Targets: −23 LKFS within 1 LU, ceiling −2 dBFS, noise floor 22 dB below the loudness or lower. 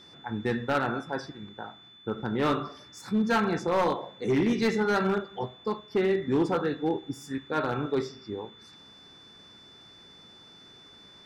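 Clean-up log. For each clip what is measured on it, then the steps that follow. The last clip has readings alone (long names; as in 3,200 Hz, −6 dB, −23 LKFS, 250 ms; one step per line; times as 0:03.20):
share of clipped samples 1.4%; peaks flattened at −19.5 dBFS; interfering tone 3,500 Hz; level of the tone −51 dBFS; integrated loudness −28.5 LKFS; sample peak −19.5 dBFS; target loudness −23.0 LKFS
→ clipped peaks rebuilt −19.5 dBFS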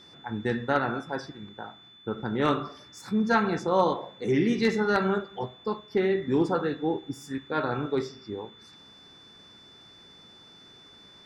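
share of clipped samples 0.0%; interfering tone 3,500 Hz; level of the tone −51 dBFS
→ notch filter 3,500 Hz, Q 30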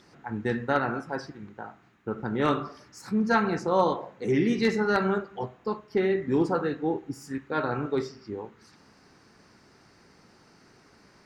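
interfering tone none found; integrated loudness −28.0 LKFS; sample peak −10.5 dBFS; target loudness −23.0 LKFS
→ level +5 dB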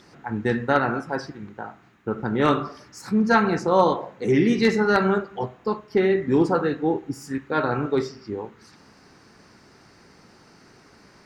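integrated loudness −23.0 LKFS; sample peak −5.5 dBFS; background noise floor −53 dBFS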